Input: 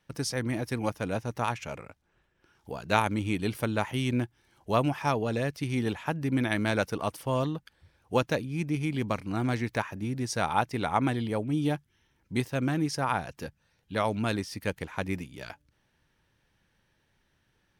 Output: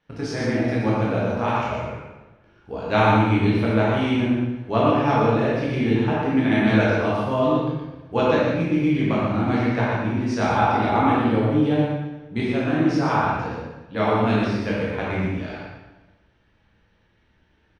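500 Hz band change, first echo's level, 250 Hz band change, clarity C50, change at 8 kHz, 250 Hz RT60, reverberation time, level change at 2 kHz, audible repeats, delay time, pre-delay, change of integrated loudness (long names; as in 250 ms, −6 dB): +9.5 dB, −3.5 dB, +10.0 dB, −3.0 dB, can't be measured, 1.2 s, 1.1 s, +7.0 dB, 1, 119 ms, 11 ms, +8.5 dB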